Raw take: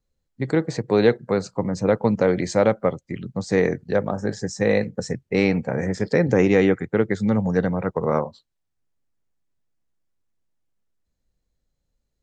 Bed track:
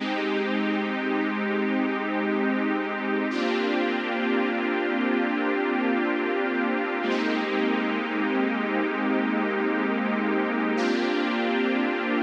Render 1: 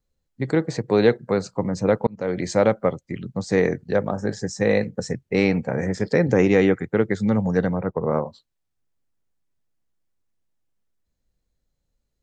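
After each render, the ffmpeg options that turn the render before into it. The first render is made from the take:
-filter_complex "[0:a]asplit=3[a][b][c];[a]afade=t=out:st=7.77:d=0.02[d];[b]lowpass=f=1.1k:p=1,afade=t=in:st=7.77:d=0.02,afade=t=out:st=8.24:d=0.02[e];[c]afade=t=in:st=8.24:d=0.02[f];[d][e][f]amix=inputs=3:normalize=0,asplit=2[g][h];[g]atrim=end=2.07,asetpts=PTS-STARTPTS,afade=t=out:st=2.066:d=0.004:c=hsin[i];[h]atrim=start=2.07,asetpts=PTS-STARTPTS,afade=t=in:d=0.43[j];[i][j]concat=n=2:v=0:a=1"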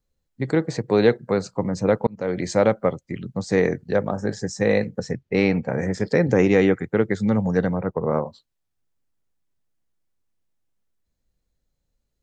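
-filter_complex "[0:a]asettb=1/sr,asplit=3[a][b][c];[a]atrim=end=4.994[d];[b]atrim=start=4.99:end=5.68,asetpts=PTS-STARTPTS,afade=t=in:d=0.004:c=qsin,afade=t=out:st=0.686:d=0.004:c=qsin,lowpass=5.3k[e];[c]atrim=start=5.676[f];[d][e]acrossfade=d=0.004:c1=hsin:c2=qsin[g];[g][f]acrossfade=d=0.004:c1=qsin:c2=hsin"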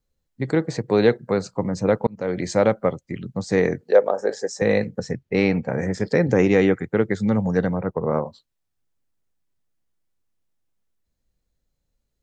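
-filter_complex "[0:a]asettb=1/sr,asplit=3[a][b][c];[a]atrim=end=3.814[d];[b]atrim=start=3.81:end=4.62,asetpts=PTS-STARTPTS,afade=t=in:d=0.004:c=qsin,afade=t=out:st=0.806:d=0.004:c=qsin,highpass=f=490:t=q:w=2.5[e];[c]atrim=start=4.616[f];[d][e]acrossfade=d=0.004:c1=hsin:c2=qsin[g];[g][f]acrossfade=d=0.004:c1=qsin:c2=hsin"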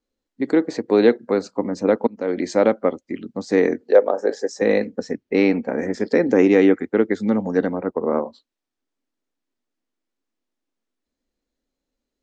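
-af "lowpass=6.6k,lowshelf=f=190:t=q:w=3:g=-10.5"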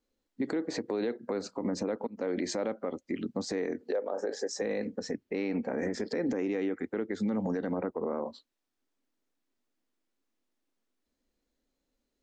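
-af "acompressor=threshold=-21dB:ratio=5,alimiter=limit=-23dB:level=0:latency=1:release=54"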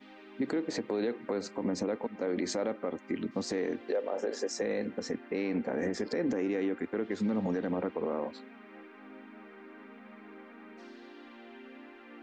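-filter_complex "[1:a]volume=-25.5dB[a];[0:a][a]amix=inputs=2:normalize=0"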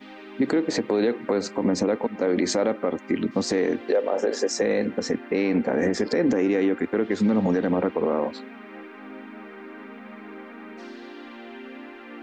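-af "volume=9.5dB"

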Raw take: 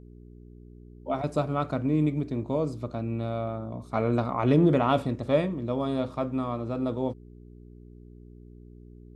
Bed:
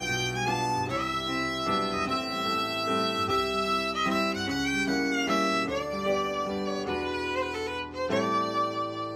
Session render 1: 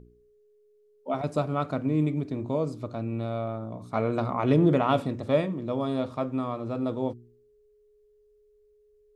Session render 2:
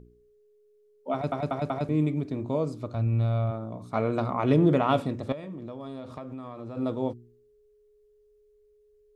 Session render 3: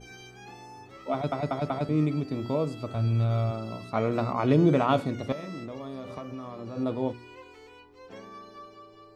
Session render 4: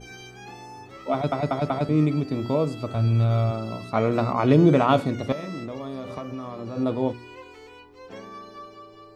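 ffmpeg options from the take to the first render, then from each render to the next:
-af "bandreject=f=60:t=h:w=4,bandreject=f=120:t=h:w=4,bandreject=f=180:t=h:w=4,bandreject=f=240:t=h:w=4,bandreject=f=300:t=h:w=4,bandreject=f=360:t=h:w=4"
-filter_complex "[0:a]asplit=3[a][b][c];[a]afade=t=out:st=2.93:d=0.02[d];[b]asubboost=boost=11:cutoff=97,afade=t=in:st=2.93:d=0.02,afade=t=out:st=3.5:d=0.02[e];[c]afade=t=in:st=3.5:d=0.02[f];[d][e][f]amix=inputs=3:normalize=0,asettb=1/sr,asplit=3[g][h][i];[g]atrim=end=5.324[j];[h]atrim=start=5.32:end=6.77,asetpts=PTS-STARTPTS,afade=t=in:d=0.004:c=qsin,afade=t=out:st=1.446:d=0.004:c=qsin,acompressor=threshold=-34dB:ratio=12:attack=3.2:release=140:knee=1:detection=peak[k];[i]atrim=start=6.766[l];[j][k]acrossfade=d=0.004:c1=hsin:c2=qsin[m];[m][l]acrossfade=d=0.004:c1=qsin:c2=hsin,asplit=5[n][o][p][q][r];[n]atrim=end=1.322[s];[o]atrim=start=1.128:end=1.322[t];[p]atrim=start=1.128:end=1.322[u];[q]atrim=start=1.128:end=1.322[v];[r]atrim=start=1.888[w];[s][t]acrossfade=d=0.004:c1=hsin:c2=hsin[x];[x][u]acrossfade=d=0.004:c1=hsin:c2=hsin[y];[y][v]acrossfade=d=0.004:c1=hsin:c2=hsin[z];[z][w]acrossfade=d=0.004:c1=hsin:c2=hsin"
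-filter_complex "[1:a]volume=-18.5dB[a];[0:a][a]amix=inputs=2:normalize=0"
-af "volume=4.5dB"

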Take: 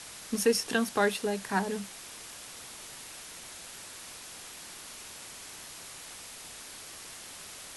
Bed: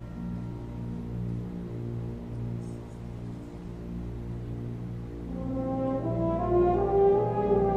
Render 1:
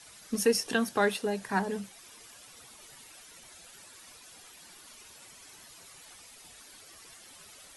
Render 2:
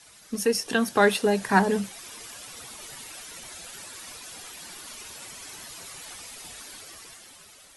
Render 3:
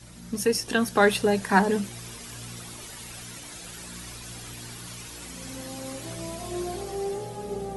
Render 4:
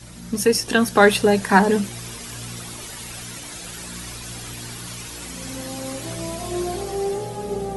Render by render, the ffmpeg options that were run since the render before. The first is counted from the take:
-af "afftdn=nr=11:nf=-46"
-af "dynaudnorm=f=210:g=9:m=10dB"
-filter_complex "[1:a]volume=-9dB[a];[0:a][a]amix=inputs=2:normalize=0"
-af "volume=6dB,alimiter=limit=-1dB:level=0:latency=1"

